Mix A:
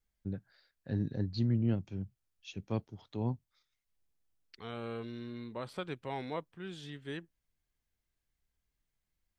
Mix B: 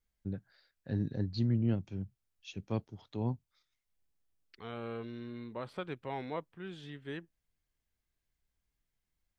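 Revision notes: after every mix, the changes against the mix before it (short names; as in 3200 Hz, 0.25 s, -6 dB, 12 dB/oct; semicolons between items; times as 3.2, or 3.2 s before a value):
second voice: add tone controls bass -1 dB, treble -9 dB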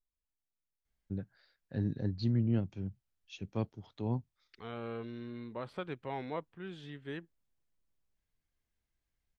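first voice: entry +0.85 s; master: add high shelf 6000 Hz -5 dB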